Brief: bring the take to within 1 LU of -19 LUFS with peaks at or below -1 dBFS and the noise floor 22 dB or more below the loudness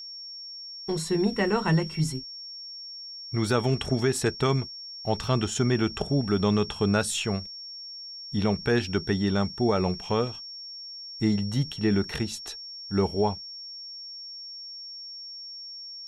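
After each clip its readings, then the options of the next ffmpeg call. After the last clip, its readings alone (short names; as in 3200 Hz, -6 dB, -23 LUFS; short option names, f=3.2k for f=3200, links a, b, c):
steady tone 5500 Hz; tone level -38 dBFS; loudness -28.5 LUFS; peak -13.0 dBFS; loudness target -19.0 LUFS
-> -af "bandreject=f=5.5k:w=30"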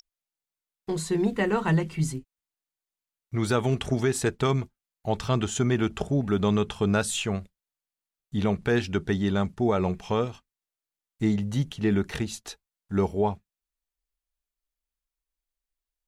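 steady tone none; loudness -27.0 LUFS; peak -13.5 dBFS; loudness target -19.0 LUFS
-> -af "volume=8dB"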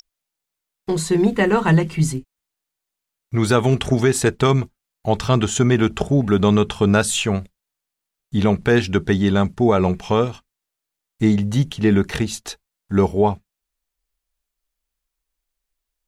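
loudness -19.0 LUFS; peak -5.5 dBFS; noise floor -83 dBFS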